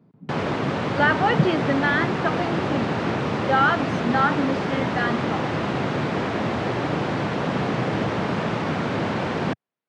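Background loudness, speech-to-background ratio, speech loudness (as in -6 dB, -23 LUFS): -25.0 LUFS, 1.0 dB, -24.0 LUFS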